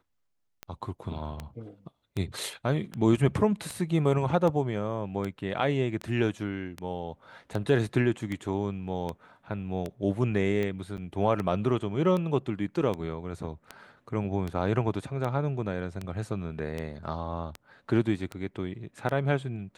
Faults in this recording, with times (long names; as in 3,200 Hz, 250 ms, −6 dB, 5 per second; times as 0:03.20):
scratch tick 78 rpm −20 dBFS
0:10.97–0:10.98: drop-out 8.5 ms